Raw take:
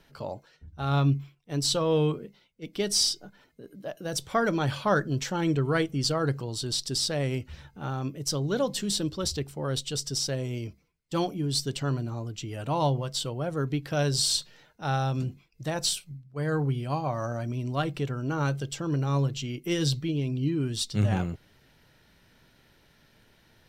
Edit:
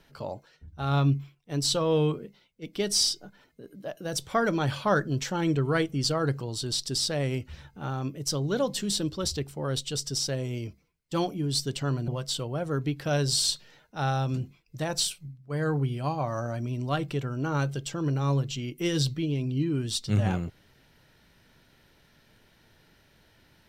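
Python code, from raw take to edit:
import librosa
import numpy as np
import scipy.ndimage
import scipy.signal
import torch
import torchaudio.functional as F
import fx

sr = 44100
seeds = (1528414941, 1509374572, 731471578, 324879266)

y = fx.edit(x, sr, fx.cut(start_s=12.08, length_s=0.86), tone=tone)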